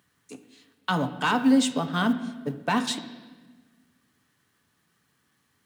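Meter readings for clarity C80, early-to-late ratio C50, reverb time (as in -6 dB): 13.5 dB, 12.0 dB, 1.4 s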